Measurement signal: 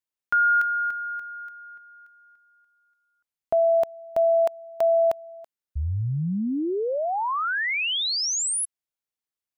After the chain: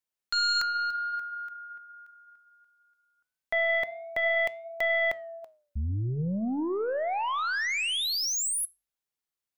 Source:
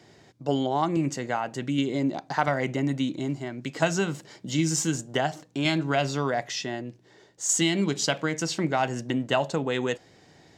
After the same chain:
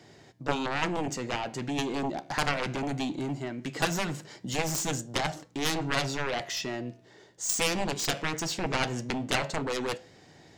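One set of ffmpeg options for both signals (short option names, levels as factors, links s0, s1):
-af "aeval=exprs='0.355*(cos(1*acos(clip(val(0)/0.355,-1,1)))-cos(1*PI/2))+0.00708*(cos(6*acos(clip(val(0)/0.355,-1,1)))-cos(6*PI/2))+0.141*(cos(7*acos(clip(val(0)/0.355,-1,1)))-cos(7*PI/2))':c=same,flanger=delay=6.8:depth=9.3:regen=-88:speed=0.2:shape=triangular"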